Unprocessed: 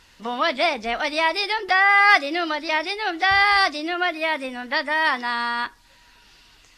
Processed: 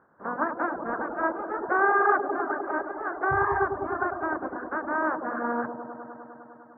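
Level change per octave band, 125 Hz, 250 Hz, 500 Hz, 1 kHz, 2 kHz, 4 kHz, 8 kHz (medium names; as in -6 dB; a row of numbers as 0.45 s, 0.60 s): no reading, -1.0 dB, -1.5 dB, -5.0 dB, -10.0 dB, under -40 dB, under -35 dB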